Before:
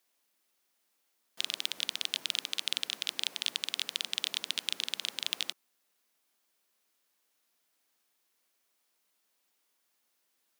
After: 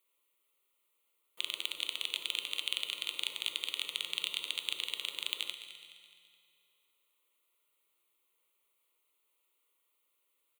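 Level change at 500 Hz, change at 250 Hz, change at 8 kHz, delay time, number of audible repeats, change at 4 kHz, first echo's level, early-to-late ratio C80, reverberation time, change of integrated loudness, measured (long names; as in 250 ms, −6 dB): −1.0 dB, −6.0 dB, −5.5 dB, 211 ms, 4, −2.0 dB, −12.5 dB, 8.0 dB, 2.4 s, −2.0 dB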